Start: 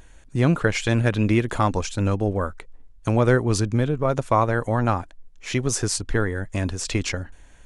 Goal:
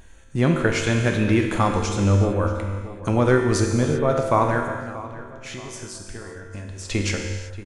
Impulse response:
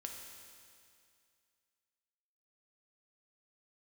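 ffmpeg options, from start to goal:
-filter_complex "[0:a]asettb=1/sr,asplit=3[a][b][c];[a]atrim=end=4.684[d];[b]atrim=start=4.68:end=6.9,asetpts=PTS-STARTPTS,afade=t=in:d=0.004:c=qsin,afade=t=out:st=2.216:d=0.004:c=qsin,acompressor=threshold=-35dB:ratio=6[e];[c]atrim=start=6.896[f];[d][e]acrossfade=d=0.004:c1=hsin:c2=qsin[g];[g][f]acrossfade=d=0.004:c1=qsin:c2=hsin,asplit=2[h][i];[i]adelay=632,lowpass=f=3.1k:p=1,volume=-15.5dB,asplit=2[j][k];[k]adelay=632,lowpass=f=3.1k:p=1,volume=0.41,asplit=2[l][m];[m]adelay=632,lowpass=f=3.1k:p=1,volume=0.41,asplit=2[n][o];[o]adelay=632,lowpass=f=3.1k:p=1,volume=0.41[p];[h][j][l][n][p]amix=inputs=5:normalize=0[q];[1:a]atrim=start_sample=2205,afade=t=out:st=0.44:d=0.01,atrim=end_sample=19845[r];[q][r]afir=irnorm=-1:irlink=0,volume=4.5dB"

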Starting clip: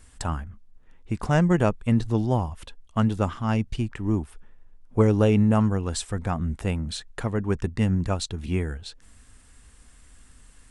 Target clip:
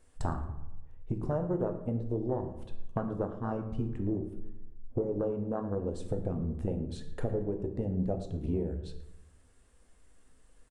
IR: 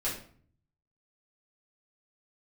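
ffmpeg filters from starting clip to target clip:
-filter_complex "[0:a]afwtdn=0.0562,equalizer=f=500:w=0.91:g=12,acompressor=threshold=-32dB:ratio=10,asplit=2[a][b];[b]adelay=113,lowpass=f=2.1k:p=1,volume=-14dB,asplit=2[c][d];[d]adelay=113,lowpass=f=2.1k:p=1,volume=0.49,asplit=2[e][f];[f]adelay=113,lowpass=f=2.1k:p=1,volume=0.49,asplit=2[g][h];[h]adelay=113,lowpass=f=2.1k:p=1,volume=0.49,asplit=2[i][j];[j]adelay=113,lowpass=f=2.1k:p=1,volume=0.49[k];[a][c][e][g][i][k]amix=inputs=6:normalize=0,asplit=2[l][m];[1:a]atrim=start_sample=2205,asetrate=29106,aresample=44100[n];[m][n]afir=irnorm=-1:irlink=0,volume=-12dB[o];[l][o]amix=inputs=2:normalize=0"

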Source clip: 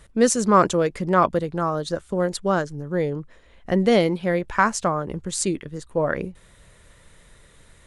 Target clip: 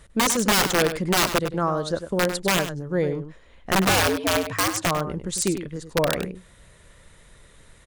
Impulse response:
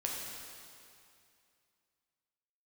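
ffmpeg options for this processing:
-filter_complex "[0:a]asplit=3[a][b][c];[a]afade=t=out:st=3.88:d=0.02[d];[b]afreqshift=98,afade=t=in:st=3.88:d=0.02,afade=t=out:st=4.85:d=0.02[e];[c]afade=t=in:st=4.85:d=0.02[f];[d][e][f]amix=inputs=3:normalize=0,aeval=exprs='(mod(4.73*val(0)+1,2)-1)/4.73':c=same,asplit=2[g][h];[h]adelay=99.13,volume=-10dB,highshelf=f=4k:g=-2.23[i];[g][i]amix=inputs=2:normalize=0"

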